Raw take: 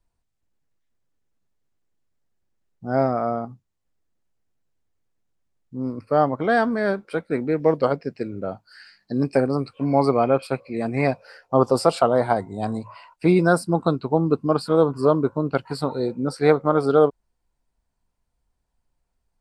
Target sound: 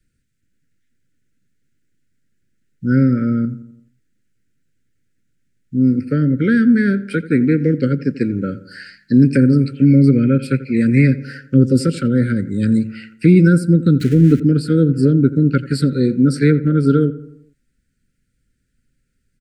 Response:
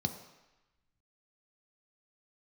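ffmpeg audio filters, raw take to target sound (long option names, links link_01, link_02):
-filter_complex "[0:a]asettb=1/sr,asplit=3[link_01][link_02][link_03];[link_01]atrim=end=14.004[link_04];[link_02]atrim=start=14:end=14.4,asetpts=PTS-STARTPTS,afade=type=in:duration=0.004:curve=qsin,afade=type=out:start_time=0.396:duration=0.004:curve=qsin,aeval=exprs='val(0)+0.5*0.0251*sgn(val(0))':channel_layout=same[link_05];[link_03]atrim=start=14.396[link_06];[link_04][link_05]acrossfade=duration=0.004:curve1=hsin:curve2=qsin[link_07];[link_07][link_06]acrossfade=duration=0.004:curve1=qsin:curve2=hsin,equalizer=frequency=125:width_type=o:width=1:gain=8,equalizer=frequency=250:width_type=o:width=1:gain=9,equalizer=frequency=500:width_type=o:width=1:gain=-5,equalizer=frequency=1000:width_type=o:width=1:gain=7,equalizer=frequency=2000:width_type=o:width=1:gain=6,equalizer=frequency=8000:width_type=o:width=1:gain=5,acrossover=split=320[link_08][link_09];[link_09]acompressor=threshold=-22dB:ratio=10[link_10];[link_08][link_10]amix=inputs=2:normalize=0,asuperstop=centerf=870:order=20:qfactor=1.1,asplit=2[link_11][link_12];[link_12]adelay=86,lowpass=frequency=1900:poles=1,volume=-15.5dB,asplit=2[link_13][link_14];[link_14]adelay=86,lowpass=frequency=1900:poles=1,volume=0.53,asplit=2[link_15][link_16];[link_16]adelay=86,lowpass=frequency=1900:poles=1,volume=0.53,asplit=2[link_17][link_18];[link_18]adelay=86,lowpass=frequency=1900:poles=1,volume=0.53,asplit=2[link_19][link_20];[link_20]adelay=86,lowpass=frequency=1900:poles=1,volume=0.53[link_21];[link_11][link_13][link_15][link_17][link_19][link_21]amix=inputs=6:normalize=0,alimiter=level_in=5.5dB:limit=-1dB:release=50:level=0:latency=1,volume=-1dB"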